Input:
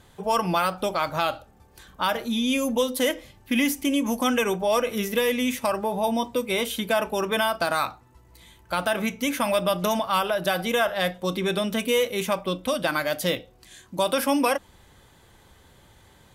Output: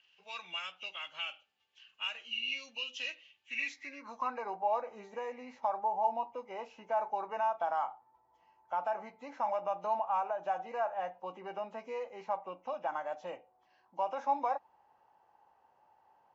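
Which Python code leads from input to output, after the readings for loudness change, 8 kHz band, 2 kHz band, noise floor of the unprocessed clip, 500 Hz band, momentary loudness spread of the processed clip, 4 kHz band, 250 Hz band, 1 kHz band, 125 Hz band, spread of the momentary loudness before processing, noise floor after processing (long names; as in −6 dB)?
−12.0 dB, below −25 dB, −13.5 dB, −56 dBFS, −13.5 dB, 11 LU, −13.0 dB, −27.5 dB, −6.5 dB, below −25 dB, 4 LU, −71 dBFS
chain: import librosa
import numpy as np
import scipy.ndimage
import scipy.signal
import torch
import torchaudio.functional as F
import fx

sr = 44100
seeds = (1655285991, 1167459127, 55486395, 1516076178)

y = fx.freq_compress(x, sr, knee_hz=1800.0, ratio=1.5)
y = fx.filter_sweep_bandpass(y, sr, from_hz=2900.0, to_hz=830.0, start_s=3.55, end_s=4.39, q=6.0)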